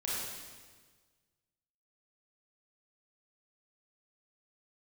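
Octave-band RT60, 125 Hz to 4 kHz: 1.8, 1.6, 1.5, 1.4, 1.4, 1.4 s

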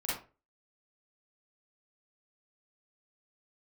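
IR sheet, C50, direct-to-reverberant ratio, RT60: -1.0 dB, -8.5 dB, 0.35 s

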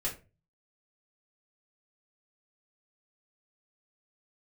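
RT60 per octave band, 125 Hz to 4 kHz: 0.60, 0.40, 0.35, 0.25, 0.25, 0.20 s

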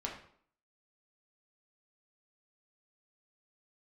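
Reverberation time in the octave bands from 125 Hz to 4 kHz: 0.50, 0.60, 0.60, 0.55, 0.50, 0.45 s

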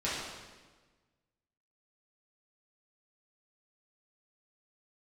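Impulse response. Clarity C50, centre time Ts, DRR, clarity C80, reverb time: -0.5 dB, 89 ms, -10.0 dB, 2.0 dB, 1.3 s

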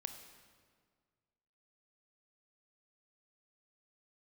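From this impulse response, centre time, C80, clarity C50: 25 ms, 9.5 dB, 8.0 dB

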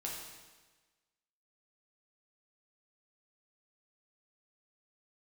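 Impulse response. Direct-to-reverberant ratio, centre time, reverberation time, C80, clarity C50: -3.5 dB, 67 ms, 1.3 s, 4.0 dB, 1.5 dB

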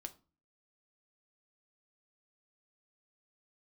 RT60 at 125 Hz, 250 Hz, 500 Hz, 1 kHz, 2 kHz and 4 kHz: 0.55, 0.55, 0.35, 0.35, 0.25, 0.25 s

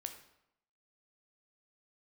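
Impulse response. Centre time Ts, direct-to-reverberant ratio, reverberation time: 14 ms, 5.5 dB, 0.80 s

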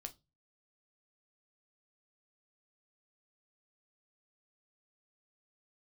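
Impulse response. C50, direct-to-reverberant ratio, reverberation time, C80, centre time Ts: 20.5 dB, 6.0 dB, not exponential, 30.0 dB, 5 ms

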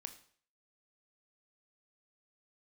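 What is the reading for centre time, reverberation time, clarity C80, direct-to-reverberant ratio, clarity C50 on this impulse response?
8 ms, 0.50 s, 15.5 dB, 7.5 dB, 12.5 dB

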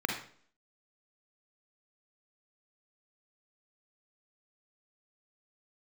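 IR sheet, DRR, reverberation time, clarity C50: 1.0 dB, 0.50 s, 4.0 dB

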